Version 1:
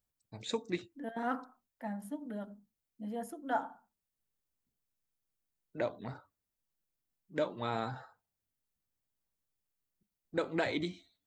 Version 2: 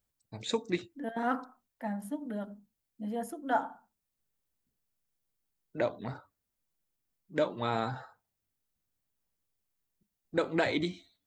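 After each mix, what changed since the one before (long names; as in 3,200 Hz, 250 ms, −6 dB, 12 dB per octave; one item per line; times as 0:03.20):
first voice +4.0 dB
second voice +4.0 dB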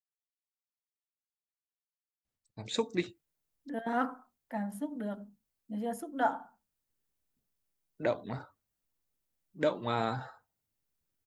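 first voice: entry +2.25 s
second voice: entry +2.70 s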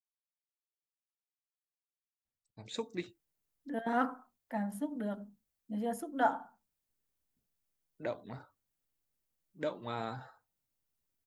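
first voice −7.0 dB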